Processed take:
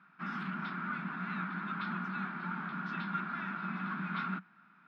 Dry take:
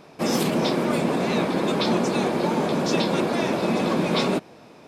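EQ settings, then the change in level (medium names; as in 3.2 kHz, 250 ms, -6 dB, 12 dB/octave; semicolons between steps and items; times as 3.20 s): two resonant band-passes 510 Hz, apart 2.9 oct; distance through air 400 m; tilt EQ +4.5 dB/octave; +2.5 dB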